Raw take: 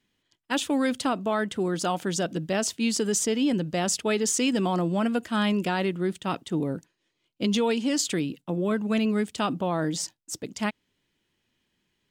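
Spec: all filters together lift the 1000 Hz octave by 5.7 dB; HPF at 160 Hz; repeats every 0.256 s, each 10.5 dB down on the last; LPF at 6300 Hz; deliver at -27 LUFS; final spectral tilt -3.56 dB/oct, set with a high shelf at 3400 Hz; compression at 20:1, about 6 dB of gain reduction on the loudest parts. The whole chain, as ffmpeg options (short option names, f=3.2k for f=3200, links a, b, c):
-af "highpass=160,lowpass=6.3k,equalizer=f=1k:t=o:g=7,highshelf=f=3.4k:g=5,acompressor=threshold=-23dB:ratio=20,aecho=1:1:256|512|768:0.299|0.0896|0.0269,volume=2dB"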